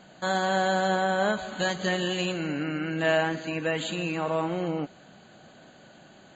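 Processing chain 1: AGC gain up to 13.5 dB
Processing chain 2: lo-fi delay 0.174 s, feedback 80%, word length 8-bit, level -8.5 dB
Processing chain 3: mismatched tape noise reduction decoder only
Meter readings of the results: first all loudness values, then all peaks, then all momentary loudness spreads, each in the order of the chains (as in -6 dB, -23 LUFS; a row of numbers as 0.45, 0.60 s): -16.5, -26.5, -27.5 LUFS; -2.5, -12.5, -13.5 dBFS; 5, 13, 6 LU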